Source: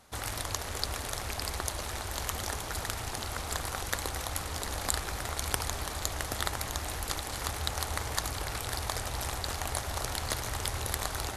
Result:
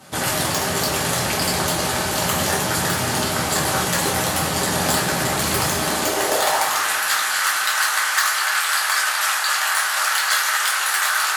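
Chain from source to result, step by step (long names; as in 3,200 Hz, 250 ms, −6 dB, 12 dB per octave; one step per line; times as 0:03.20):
sine wavefolder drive 14 dB, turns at −4.5 dBFS
high-pass filter sweep 160 Hz → 1,400 Hz, 0:05.76–0:06.83
coupled-rooms reverb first 0.31 s, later 3.5 s, from −18 dB, DRR −5.5 dB
level −8.5 dB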